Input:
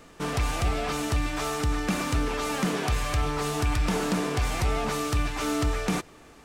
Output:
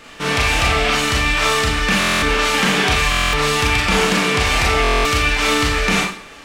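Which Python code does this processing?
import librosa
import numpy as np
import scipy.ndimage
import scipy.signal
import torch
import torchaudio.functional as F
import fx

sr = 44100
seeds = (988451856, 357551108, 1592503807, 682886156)

y = fx.peak_eq(x, sr, hz=2700.0, db=11.0, octaves=2.3)
y = fx.rev_schroeder(y, sr, rt60_s=0.46, comb_ms=28, drr_db=-3.0)
y = fx.buffer_glitch(y, sr, at_s=(1.99, 3.1, 4.82), block=1024, repeats=9)
y = y * librosa.db_to_amplitude(3.0)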